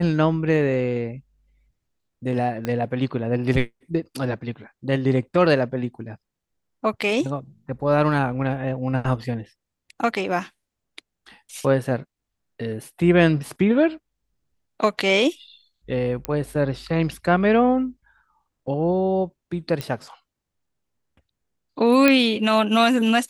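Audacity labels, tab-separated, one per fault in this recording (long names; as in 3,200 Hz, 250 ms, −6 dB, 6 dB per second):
2.650000	2.650000	click −13 dBFS
16.250000	16.250000	click −10 dBFS
19.810000	19.810000	click −13 dBFS
22.080000	22.080000	click −4 dBFS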